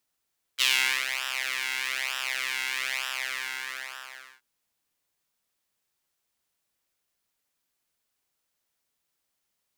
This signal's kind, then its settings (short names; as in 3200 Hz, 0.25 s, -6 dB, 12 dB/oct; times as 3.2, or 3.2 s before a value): synth patch with pulse-width modulation C3, interval -12 st, detune 29 cents, noise -29 dB, filter highpass, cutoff 1600 Hz, Q 2.5, filter envelope 1 oct, attack 32 ms, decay 0.43 s, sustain -10 dB, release 1.44 s, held 2.39 s, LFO 1.1 Hz, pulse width 14%, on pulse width 8%